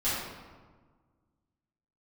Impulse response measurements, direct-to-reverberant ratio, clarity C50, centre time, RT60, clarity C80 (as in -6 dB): -13.0 dB, -1.5 dB, 90 ms, 1.5 s, 1.5 dB